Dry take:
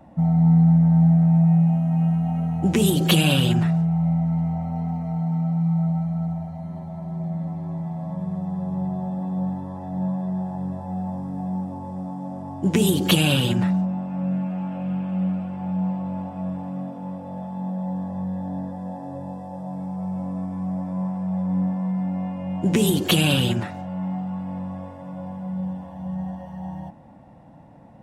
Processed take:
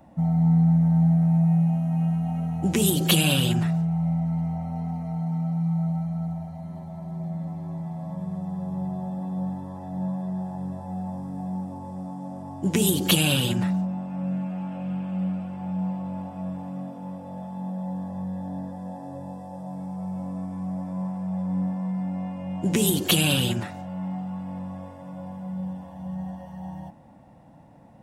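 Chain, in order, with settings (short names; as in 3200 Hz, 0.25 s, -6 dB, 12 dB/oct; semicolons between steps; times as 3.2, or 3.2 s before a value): high shelf 4800 Hz +8.5 dB; gain -3.5 dB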